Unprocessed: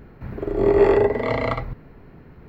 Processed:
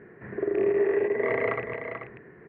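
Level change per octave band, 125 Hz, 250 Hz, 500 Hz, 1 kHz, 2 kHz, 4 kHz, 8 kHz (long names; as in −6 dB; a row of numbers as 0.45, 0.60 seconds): −14.5 dB, −7.5 dB, −6.0 dB, −9.5 dB, −0.5 dB, below −10 dB, can't be measured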